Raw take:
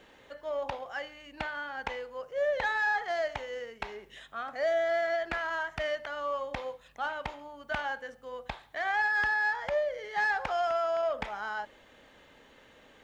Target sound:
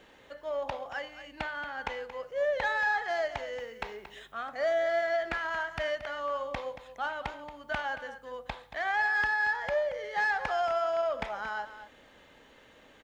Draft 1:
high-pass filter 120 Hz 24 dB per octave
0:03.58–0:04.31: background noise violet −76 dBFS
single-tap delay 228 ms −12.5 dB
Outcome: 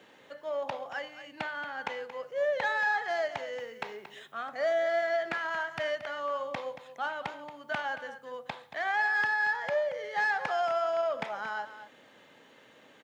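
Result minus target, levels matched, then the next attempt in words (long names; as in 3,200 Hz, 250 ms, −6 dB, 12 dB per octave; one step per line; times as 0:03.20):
125 Hz band −4.0 dB
0:03.58–0:04.31: background noise violet −76 dBFS
single-tap delay 228 ms −12.5 dB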